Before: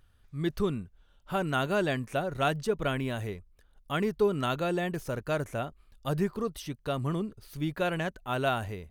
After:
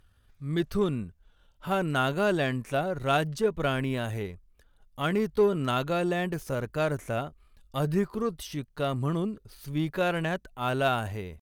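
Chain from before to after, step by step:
tempo change 0.78×
harmonic generator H 8 −34 dB, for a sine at −15 dBFS
level +2 dB

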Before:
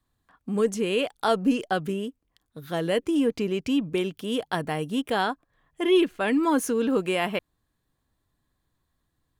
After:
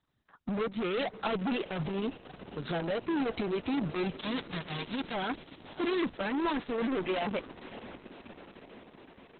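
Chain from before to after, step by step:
0:04.21–0:05.13: spectral envelope flattened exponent 0.1
high-pass filter 85 Hz 12 dB per octave
0:02.70–0:03.46: notch filter 1,900 Hz, Q 11
reverb reduction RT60 1 s
0:06.41–0:06.91: low-pass filter 12,000 Hz 12 dB per octave
leveller curve on the samples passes 2
brickwall limiter −19 dBFS, peak gain reduction 10 dB
soft clipping −33 dBFS, distortion −8 dB
feedback delay with all-pass diffusion 587 ms, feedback 67%, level −16 dB
level +4.5 dB
Opus 6 kbit/s 48,000 Hz

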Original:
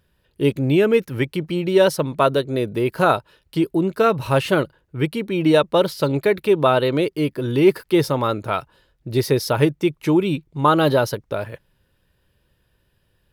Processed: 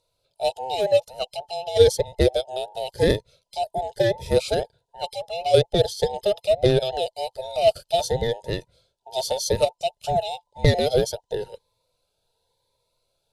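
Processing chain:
frequency inversion band by band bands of 1,000 Hz
Butterworth low-pass 12,000 Hz 36 dB per octave
low-shelf EQ 69 Hz +9.5 dB
harmonic generator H 3 −16 dB, 5 −34 dB, 7 −36 dB, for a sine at −1.5 dBFS
octave-band graphic EQ 125/250/500/1,000/2,000/4,000/8,000 Hz +8/−5/+9/−10/−9/+9/+6 dB
phaser whose notches keep moving one way rising 0.93 Hz

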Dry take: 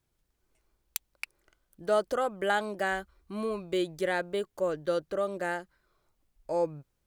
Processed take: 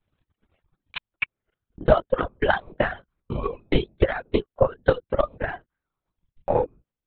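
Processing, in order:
linear-prediction vocoder at 8 kHz whisper
transient designer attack +12 dB, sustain −3 dB
reverb reduction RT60 1.2 s
level +1.5 dB

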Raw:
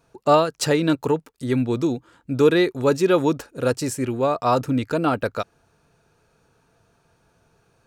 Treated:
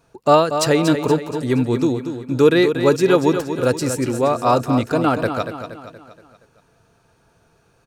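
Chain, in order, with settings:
repeating echo 236 ms, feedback 48%, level −9 dB
level +3 dB

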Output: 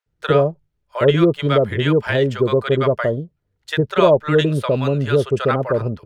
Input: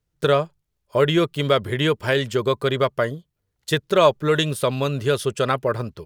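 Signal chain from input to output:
low-pass filter 1,500 Hz 6 dB per octave
notch filter 1,100 Hz, Q 15
multiband delay without the direct sound highs, lows 60 ms, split 780 Hz
level +5.5 dB

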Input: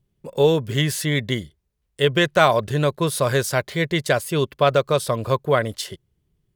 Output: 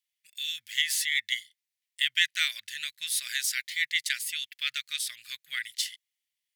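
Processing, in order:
elliptic high-pass filter 1,900 Hz, stop band 50 dB

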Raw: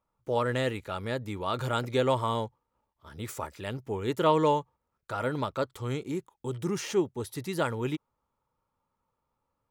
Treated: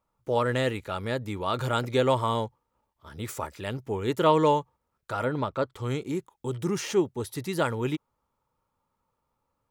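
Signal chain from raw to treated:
0:05.24–0:05.78: high-shelf EQ 3,600 Hz → 5,400 Hz −11.5 dB
level +2.5 dB

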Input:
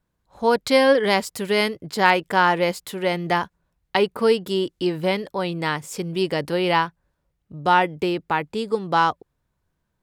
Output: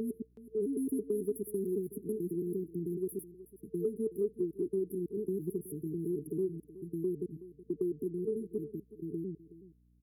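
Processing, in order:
slices reordered back to front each 110 ms, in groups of 5
meter weighting curve A
brick-wall band-stop 450–9,900 Hz
low-shelf EQ 180 Hz +6 dB
downward compressor 3 to 1, threshold −31 dBFS, peak gain reduction 9.5 dB
mains hum 60 Hz, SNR 30 dB
on a send: single-tap delay 372 ms −16.5 dB

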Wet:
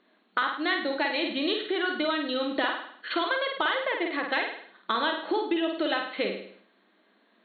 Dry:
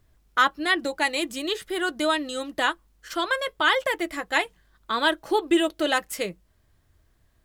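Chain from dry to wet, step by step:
brick-wall band-pass 190–4,400 Hz
downward compressor 6 to 1, threshold −33 dBFS, peak gain reduction 17.5 dB
flutter between parallel walls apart 8.8 metres, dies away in 0.56 s
level that may fall only so fast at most 94 dB per second
level +7 dB

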